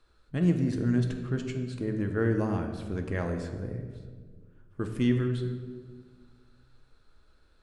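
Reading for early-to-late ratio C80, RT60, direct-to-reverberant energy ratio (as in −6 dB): 8.5 dB, 1.6 s, 4.0 dB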